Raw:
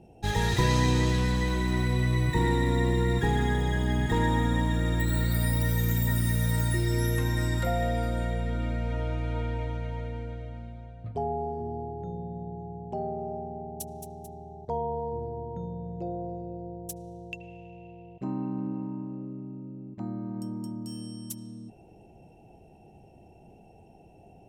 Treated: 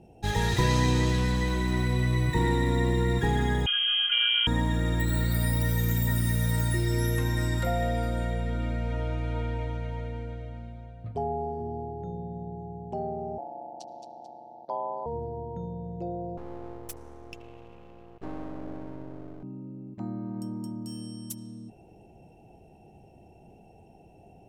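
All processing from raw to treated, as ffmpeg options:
-filter_complex "[0:a]asettb=1/sr,asplit=3[a][b][c];[a]atrim=end=3.664[d];[b]atrim=start=3.66:end=4.47,asetpts=PTS-STARTPTS,afade=t=in:d=0.004:c=qsin,afade=t=out:st=0.806:d=0.004:c=qsin,highshelf=f=2.1k:g=-6,lowpass=f=2.8k:t=q:w=0.5098,lowpass=f=2.8k:t=q:w=0.6013,lowpass=f=2.8k:t=q:w=0.9,lowpass=f=2.8k:t=q:w=2.563,afreqshift=-3300[e];[c]atrim=start=4.466[f];[d][e]acrossfade=d=0.004:c1=hsin:c2=qsin[g];[g][f]acrossfade=d=0.004:c1=qsin:c2=hsin,asettb=1/sr,asplit=3[h][i][j];[h]atrim=end=13.384[k];[i]atrim=start=13.38:end=15.06,asetpts=PTS-STARTPTS,afade=t=in:d=0.004:c=qsin,afade=t=out:st=1.676:d=0.004:c=qsin,aeval=exprs='val(0)*sin(2*PI*65*n/s)':c=same,highpass=370,equalizer=f=440:t=q:w=4:g=-10,equalizer=f=660:t=q:w=4:g=7,equalizer=f=940:t=q:w=4:g=4,equalizer=f=1.4k:t=q:w=4:g=4,equalizer=f=2k:t=q:w=4:g=-8,equalizer=f=4.5k:t=q:w=4:g=9,lowpass=f=5.4k:w=0.5412,lowpass=f=5.4k:w=1.3066[l];[j]atrim=start=15.056[m];[k][l]acrossfade=d=0.004:c1=hsin:c2=qsin[n];[n][m]acrossfade=d=0.004:c1=qsin:c2=hsin,asettb=1/sr,asplit=3[o][p][q];[o]atrim=end=16.374[r];[p]atrim=start=16.37:end=19.43,asetpts=PTS-STARTPTS,afade=t=in:d=0.004:c=qsin,afade=t=out:st=3.056:d=0.004:c=qsin,aecho=1:1:2.4:0.75,atrim=end_sample=134946,aeval=exprs='max(val(0),0)':c=same[s];[q]atrim=start=19.426[t];[r][s]acrossfade=d=0.004:c1=hsin:c2=qsin[u];[u][t]acrossfade=d=0.004:c1=qsin:c2=hsin"

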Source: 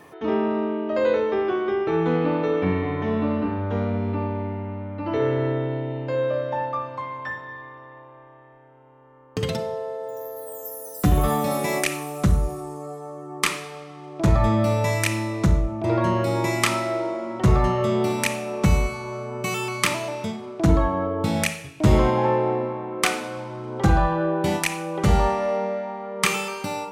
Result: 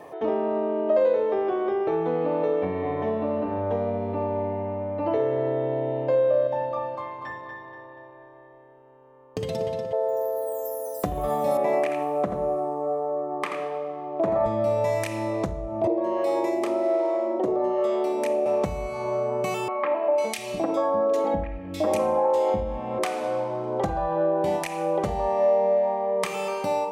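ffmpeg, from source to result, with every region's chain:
-filter_complex "[0:a]asettb=1/sr,asplit=3[a][b][c];[a]atrim=end=6.474[d];[b]atrim=start=6.47:end=9.93,asetpts=PTS-STARTPTS,afade=t=in:d=0.004:c=qsin,afade=t=out:st=3.456:d=0.004:c=qsin,equalizer=f=900:w=0.53:g=-8.5,asplit=2[e][f];[f]adelay=240,lowpass=f=4.8k:p=1,volume=-7dB,asplit=2[g][h];[h]adelay=240,lowpass=f=4.8k:p=1,volume=0.49,asplit=2[i][j];[j]adelay=240,lowpass=f=4.8k:p=1,volume=0.49,asplit=2[k][l];[l]adelay=240,lowpass=f=4.8k:p=1,volume=0.49,asplit=2[m][n];[n]adelay=240,lowpass=f=4.8k:p=1,volume=0.49,asplit=2[o][p];[p]adelay=240,lowpass=f=4.8k:p=1,volume=0.49[q];[e][g][i][k][m][o][q]amix=inputs=7:normalize=0,atrim=end_sample=152586[r];[c]atrim=start=9.926[s];[d][r]acrossfade=d=0.004:c1=hsin:c2=qsin[t];[t][s]acrossfade=d=0.004:c1=qsin:c2=hsin,asettb=1/sr,asplit=3[u][v][w];[u]atrim=end=11.574[x];[v]atrim=start=11.57:end=14.46,asetpts=PTS-STARTPTS,afade=t=in:d=0.004:c=qsin,afade=t=out:st=2.886:d=0.004:c=qsin,acrossover=split=160 2700:gain=0.0794 1 0.178[y][z][aa];[y][z][aa]amix=inputs=3:normalize=0,aecho=1:1:82:0.422,atrim=end_sample=127449[ab];[w]atrim=start=14.456[ac];[x][ab]acrossfade=d=0.004:c1=hsin:c2=qsin[ad];[ad][ac]acrossfade=d=0.004:c1=qsin:c2=hsin,asettb=1/sr,asplit=3[ae][af][ag];[ae]atrim=end=15.874[ah];[af]atrim=start=15.87:end=18.46,asetpts=PTS-STARTPTS,afade=t=in:d=0.004:c=qsin,afade=t=out:st=2.586:d=0.004:c=qsin,acrossover=split=790[ai][aj];[ai]aeval=exprs='val(0)*(1-0.7/2+0.7/2*cos(2*PI*1.2*n/s))':c=same[ak];[aj]aeval=exprs='val(0)*(1-0.7/2-0.7/2*cos(2*PI*1.2*n/s))':c=same[al];[ak][al]amix=inputs=2:normalize=0,highpass=f=330:t=q:w=2.5[am];[ag]atrim=start=18.456[an];[ah][am]acrossfade=d=0.004:c1=hsin:c2=qsin[ao];[ao][an]acrossfade=d=0.004:c1=qsin:c2=hsin,asettb=1/sr,asplit=3[ap][aq][ar];[ap]atrim=end=19.684[as];[aq]atrim=start=19.68:end=22.99,asetpts=PTS-STARTPTS,afade=t=in:d=0.004:c=qsin,afade=t=out:st=3.306:d=0.004:c=qsin,aecho=1:1:3.7:0.61,atrim=end_sample=145971,acrossover=split=270|2000[at][au][av];[av]adelay=500[aw];[at]adelay=700[ax];[ax][au][aw]amix=inputs=3:normalize=0,atrim=end_sample=145971[ay];[ar]atrim=start=22.986[az];[as][ay]acrossfade=d=0.004:c1=hsin:c2=qsin[ba];[ba][az]acrossfade=d=0.004:c1=qsin:c2=hsin,acompressor=threshold=-26dB:ratio=6,equalizer=f=620:t=o:w=1.4:g=14.5,bandreject=f=1.4k:w=9.1,volume=-4dB"

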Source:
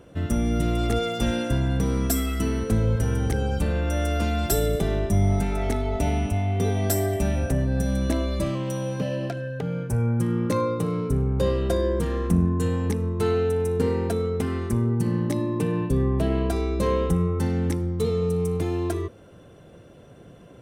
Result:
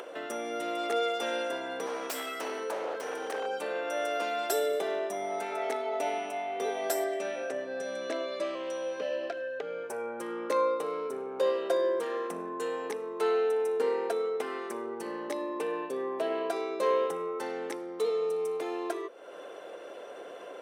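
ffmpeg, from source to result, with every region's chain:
-filter_complex "[0:a]asettb=1/sr,asplit=3[a][b][c];[a]atrim=end=1.864[d];[b]atrim=start=1.86:end=3.47,asetpts=PTS-STARTPTS,afade=t=in:d=0.004:c=qsin,afade=t=out:st=1.606:d=0.004:c=qsin,lowshelf=f=68:g=-11.5,aeval=exprs='0.0794*(abs(mod(val(0)/0.0794+3,4)-2)-1)':c=same[e];[c]atrim=start=3.466[f];[d][e]acrossfade=d=0.004:c1=hsin:c2=qsin[g];[g][f]acrossfade=d=0.004:c1=qsin:c2=hsin,asettb=1/sr,asplit=3[h][i][j];[h]atrim=end=7.044[k];[i]atrim=start=7.04:end=9.84,asetpts=PTS-STARTPTS,afade=t=in:d=0.004:c=qsin,afade=t=out:st=2.796:d=0.004:c=qsin,lowpass=7.1k,equalizer=f=880:w=3.1:g=-8[l];[j]atrim=start=9.836[m];[k][l]acrossfade=d=0.004:c1=hsin:c2=qsin[n];[n][m]acrossfade=d=0.004:c1=qsin:c2=hsin,highpass=f=440:w=0.5412,highpass=f=440:w=1.3066,highshelf=f=4.4k:g=-10,acompressor=mode=upward:threshold=-33dB:ratio=2.5"

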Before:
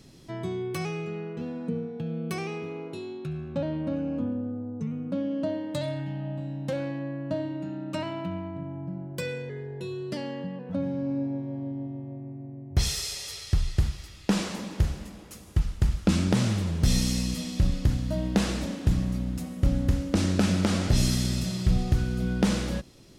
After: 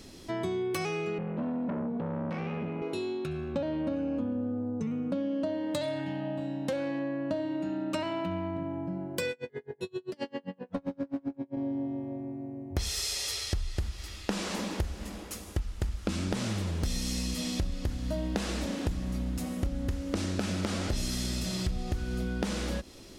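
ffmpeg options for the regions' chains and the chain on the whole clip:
-filter_complex "[0:a]asettb=1/sr,asplit=3[a][b][c];[a]atrim=end=1.184[d];[b]atrim=start=1.18:end=2.82,asetpts=PTS-STARTPTS,afade=t=in:d=0.004:c=qsin,afade=t=out:st=1.636:d=0.004:c=qsin,lowshelf=f=270:t=q:w=3:g=7.5,aeval=exprs='(tanh(28.2*val(0)+0.3)-tanh(0.3))/28.2':c=same,highpass=110,lowpass=2.2k[e];[c]atrim=start=2.816[f];[d][e]acrossfade=d=0.004:c1=hsin:c2=qsin[g];[g][f]acrossfade=d=0.004:c1=qsin:c2=hsin,asettb=1/sr,asplit=3[h][i][j];[h]atrim=end=9.314[k];[i]atrim=start=9.31:end=11.57,asetpts=PTS-STARTPTS,afade=t=in:d=0.004:c=qsin,afade=t=out:st=2.256:d=0.004:c=qsin,volume=25.5dB,asoftclip=hard,volume=-25.5dB,aeval=exprs='val(0)*pow(10,-37*(0.5-0.5*cos(2*PI*7.6*n/s))/20)':c=same[l];[j]atrim=start=11.566[m];[k][l]acrossfade=d=0.004:c1=hsin:c2=qsin[n];[n][m]acrossfade=d=0.004:c1=qsin:c2=hsin,equalizer=f=140:t=o:w=0.64:g=-12.5,acompressor=threshold=-34dB:ratio=6,volume=5.5dB"

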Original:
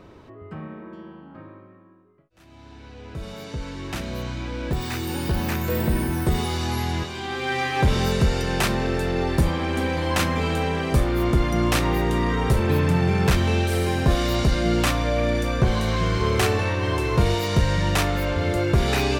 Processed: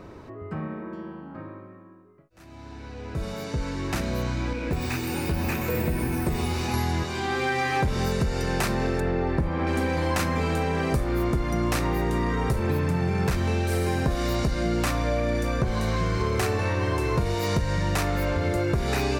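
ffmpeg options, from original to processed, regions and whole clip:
-filter_complex "[0:a]asettb=1/sr,asplit=3[a][b][c];[a]atrim=end=4.534[d];[b]atrim=start=4.53:end=6.74,asetpts=PTS-STARTPTS,afade=t=in:d=0.004:c=qsin,afade=t=out:st=2.206:d=0.004:c=qsin,equalizer=f=2.5k:w=7.6:g=9.5,flanger=delay=3.5:depth=9:regen=56:speed=1.8:shape=sinusoidal,aecho=1:1:130|260|390|520|650|780:0.282|0.155|0.0853|0.0469|0.0258|0.0142,atrim=end_sample=97461[e];[c]atrim=start=6.736[f];[d][e]acrossfade=d=0.004:c1=hsin:c2=qsin[g];[g][f]acrossfade=d=0.004:c1=qsin:c2=hsin,asettb=1/sr,asplit=3[h][i][j];[h]atrim=end=9.004[k];[i]atrim=start=9:end=9.67,asetpts=PTS-STARTPTS,afade=t=in:d=0.004:c=qsin,afade=t=out:st=0.666:d=0.004:c=qsin,aemphasis=mode=reproduction:type=cd,acrossover=split=3300[l][m];[m]acompressor=threshold=-52dB:ratio=4:attack=1:release=60[n];[l][n]amix=inputs=2:normalize=0[o];[j]atrim=start=9.666[p];[k][o]acrossfade=d=0.004:c1=hsin:c2=qsin[q];[q][p]acrossfade=d=0.004:c1=qsin:c2=hsin,equalizer=f=3.2k:w=2.7:g=-6.5,acompressor=threshold=-25dB:ratio=6,volume=3.5dB"

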